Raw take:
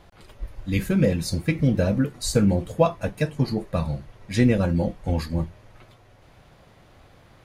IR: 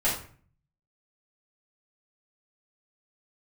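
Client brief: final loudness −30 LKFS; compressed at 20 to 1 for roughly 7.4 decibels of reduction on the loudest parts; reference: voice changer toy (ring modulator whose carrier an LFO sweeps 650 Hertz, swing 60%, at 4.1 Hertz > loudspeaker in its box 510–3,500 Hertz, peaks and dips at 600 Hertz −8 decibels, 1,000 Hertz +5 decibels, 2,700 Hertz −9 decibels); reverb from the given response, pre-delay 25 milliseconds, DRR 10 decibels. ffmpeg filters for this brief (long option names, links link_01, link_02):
-filter_complex "[0:a]acompressor=threshold=-20dB:ratio=20,asplit=2[link_01][link_02];[1:a]atrim=start_sample=2205,adelay=25[link_03];[link_02][link_03]afir=irnorm=-1:irlink=0,volume=-21.5dB[link_04];[link_01][link_04]amix=inputs=2:normalize=0,aeval=exprs='val(0)*sin(2*PI*650*n/s+650*0.6/4.1*sin(2*PI*4.1*n/s))':channel_layout=same,highpass=510,equalizer=frequency=600:width_type=q:width=4:gain=-8,equalizer=frequency=1000:width_type=q:width=4:gain=5,equalizer=frequency=2700:width_type=q:width=4:gain=-9,lowpass=frequency=3500:width=0.5412,lowpass=frequency=3500:width=1.3066,volume=0.5dB"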